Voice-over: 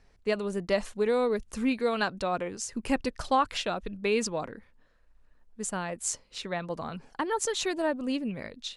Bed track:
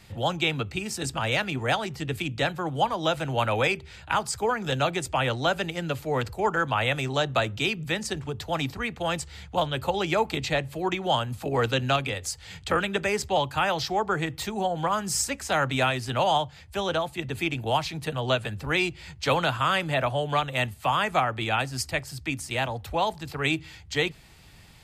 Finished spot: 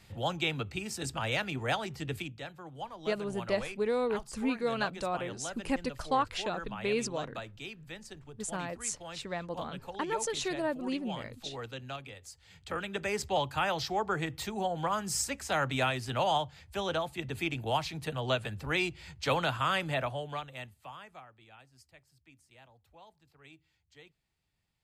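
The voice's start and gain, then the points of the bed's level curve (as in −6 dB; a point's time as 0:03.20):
2.80 s, −4.0 dB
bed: 0:02.18 −6 dB
0:02.40 −17 dB
0:12.35 −17 dB
0:13.20 −5.5 dB
0:19.91 −5.5 dB
0:21.38 −30 dB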